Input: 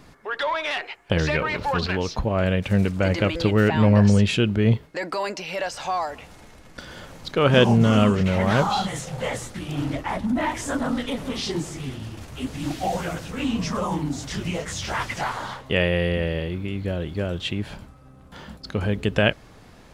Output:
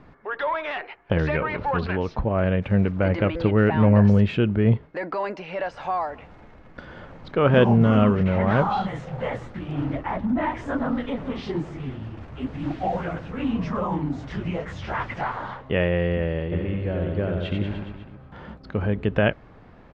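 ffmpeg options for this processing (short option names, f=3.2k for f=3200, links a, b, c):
-filter_complex "[0:a]lowpass=1.9k,asplit=3[a][b][c];[a]afade=t=out:st=16.51:d=0.02[d];[b]aecho=1:1:90|189|297.9|417.7|549.5:0.631|0.398|0.251|0.158|0.1,afade=t=in:st=16.51:d=0.02,afade=t=out:st=18.53:d=0.02[e];[c]afade=t=in:st=18.53:d=0.02[f];[d][e][f]amix=inputs=3:normalize=0"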